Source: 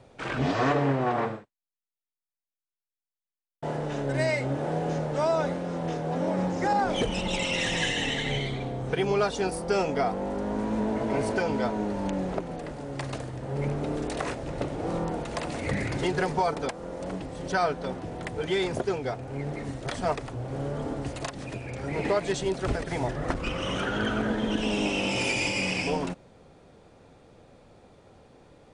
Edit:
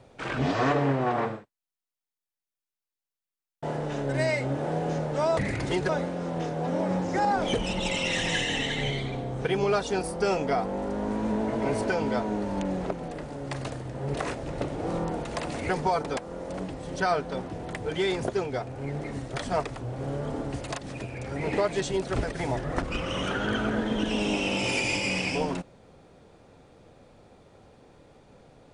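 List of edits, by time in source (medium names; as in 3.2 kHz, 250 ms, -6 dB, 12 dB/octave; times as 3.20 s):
13.62–14.14 s: delete
15.69–16.21 s: move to 5.37 s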